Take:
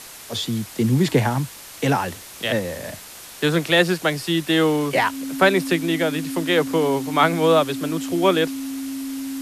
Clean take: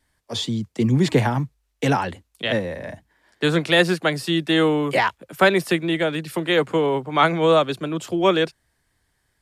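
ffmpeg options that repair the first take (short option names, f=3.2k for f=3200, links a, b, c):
-af "bandreject=f=270:w=30,afwtdn=0.013"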